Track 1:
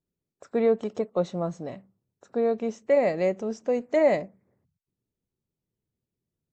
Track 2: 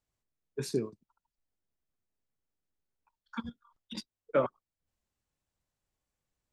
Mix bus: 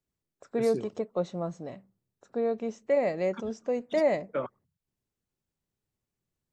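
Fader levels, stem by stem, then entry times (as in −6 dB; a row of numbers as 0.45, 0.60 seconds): −4.0, −4.5 decibels; 0.00, 0.00 seconds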